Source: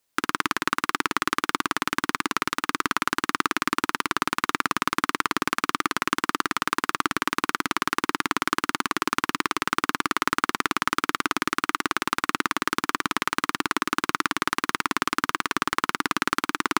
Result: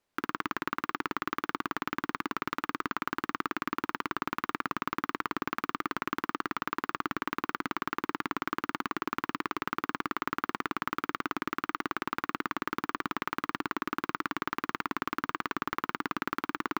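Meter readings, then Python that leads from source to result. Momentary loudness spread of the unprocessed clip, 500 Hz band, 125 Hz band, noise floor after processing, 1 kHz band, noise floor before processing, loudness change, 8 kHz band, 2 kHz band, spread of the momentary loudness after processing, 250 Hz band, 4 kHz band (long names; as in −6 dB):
1 LU, −6.0 dB, −5.5 dB, −85 dBFS, −8.0 dB, −75 dBFS, −8.5 dB, −20.0 dB, −9.5 dB, 1 LU, −6.0 dB, −14.0 dB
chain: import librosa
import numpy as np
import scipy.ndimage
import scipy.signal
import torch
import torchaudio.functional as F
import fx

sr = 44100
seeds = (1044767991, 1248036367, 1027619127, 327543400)

p1 = fx.lowpass(x, sr, hz=1500.0, slope=6)
p2 = fx.over_compress(p1, sr, threshold_db=-33.0, ratio=-0.5)
p3 = p1 + (p2 * librosa.db_to_amplitude(-3.0))
p4 = np.repeat(p3[::2], 2)[:len(p3)]
y = p4 * librosa.db_to_amplitude(-7.5)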